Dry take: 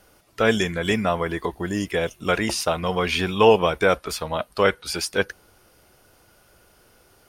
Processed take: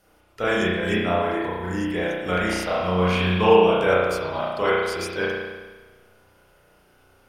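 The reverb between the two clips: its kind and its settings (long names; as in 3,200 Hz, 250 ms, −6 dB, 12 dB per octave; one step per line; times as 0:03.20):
spring reverb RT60 1.3 s, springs 33 ms, chirp 80 ms, DRR −7.5 dB
level −8 dB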